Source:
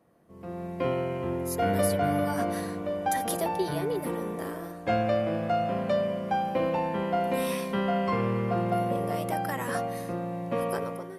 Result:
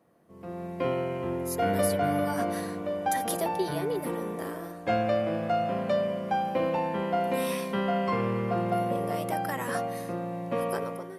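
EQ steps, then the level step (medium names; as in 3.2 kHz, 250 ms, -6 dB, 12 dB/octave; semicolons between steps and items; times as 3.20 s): bass shelf 69 Hz -9.5 dB; 0.0 dB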